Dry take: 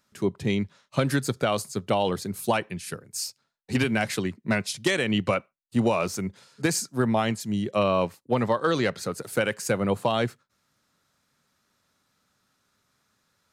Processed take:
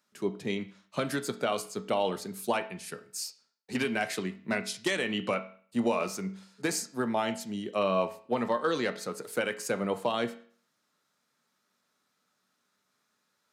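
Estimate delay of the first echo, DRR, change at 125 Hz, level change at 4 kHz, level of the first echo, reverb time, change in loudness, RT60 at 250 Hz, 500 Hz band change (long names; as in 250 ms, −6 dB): no echo audible, 8.0 dB, −12.0 dB, −4.5 dB, no echo audible, 0.50 s, −5.0 dB, 0.50 s, −4.5 dB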